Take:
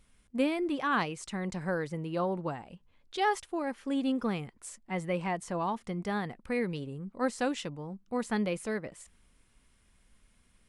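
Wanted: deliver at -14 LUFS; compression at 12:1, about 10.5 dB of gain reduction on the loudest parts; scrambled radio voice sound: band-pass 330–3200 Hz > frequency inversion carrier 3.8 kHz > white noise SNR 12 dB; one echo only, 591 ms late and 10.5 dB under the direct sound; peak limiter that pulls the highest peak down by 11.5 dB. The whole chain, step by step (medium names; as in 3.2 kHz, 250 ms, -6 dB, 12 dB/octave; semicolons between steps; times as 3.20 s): compression 12:1, threshold -34 dBFS; peak limiter -35.5 dBFS; band-pass 330–3200 Hz; delay 591 ms -10.5 dB; frequency inversion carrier 3.8 kHz; white noise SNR 12 dB; trim +30 dB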